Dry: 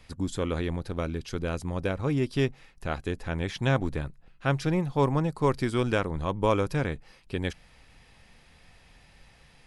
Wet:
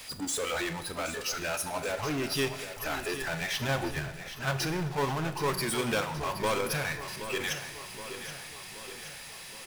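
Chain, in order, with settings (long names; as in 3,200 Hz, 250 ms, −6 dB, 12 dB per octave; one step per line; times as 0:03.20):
RIAA equalisation recording
noise reduction from a noise print of the clip's start 18 dB
0:03.41–0:05.48: high-shelf EQ 2,700 Hz −10.5 dB
output level in coarse steps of 14 dB
power curve on the samples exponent 0.35
repeating echo 773 ms, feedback 57%, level −11 dB
four-comb reverb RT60 1 s, combs from 26 ms, DRR 10.5 dB
level −7.5 dB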